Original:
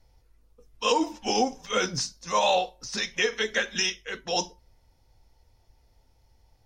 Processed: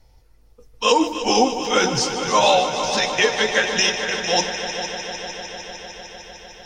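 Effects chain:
echo machine with several playback heads 151 ms, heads all three, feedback 75%, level −14 dB
level +7 dB

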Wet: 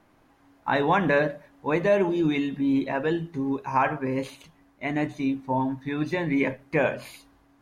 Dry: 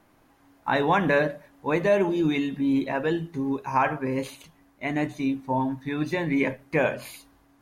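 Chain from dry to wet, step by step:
high-shelf EQ 8,500 Hz −9 dB

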